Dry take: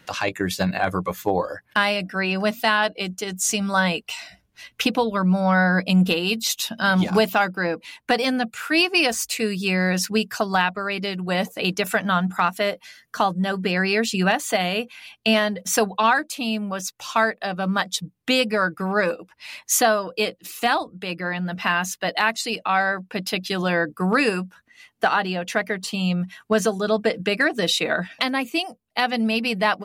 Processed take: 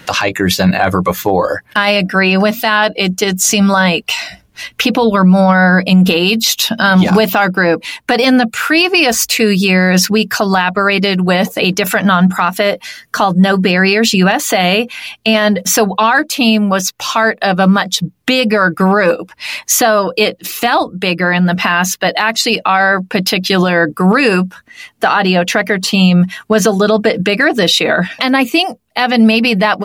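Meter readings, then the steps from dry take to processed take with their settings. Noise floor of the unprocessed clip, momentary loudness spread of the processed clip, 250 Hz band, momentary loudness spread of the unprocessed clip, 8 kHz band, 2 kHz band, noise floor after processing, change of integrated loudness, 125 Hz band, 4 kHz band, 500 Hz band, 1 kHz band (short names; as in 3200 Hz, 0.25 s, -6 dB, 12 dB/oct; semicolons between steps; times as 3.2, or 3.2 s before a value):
-62 dBFS, 6 LU, +12.0 dB, 8 LU, +10.5 dB, +9.5 dB, -46 dBFS, +10.5 dB, +12.0 dB, +10.5 dB, +10.5 dB, +9.0 dB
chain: dynamic EQ 8800 Hz, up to -7 dB, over -47 dBFS, Q 1.7; maximiser +16.5 dB; gain -1 dB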